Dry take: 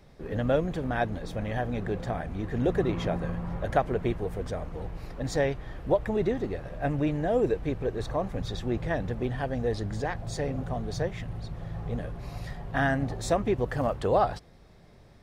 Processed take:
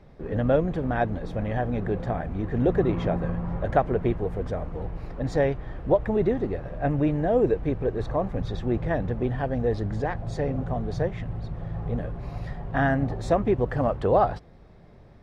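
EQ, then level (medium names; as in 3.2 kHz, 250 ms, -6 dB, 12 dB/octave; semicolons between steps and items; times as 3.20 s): low-pass 1.5 kHz 6 dB/octave; +4.0 dB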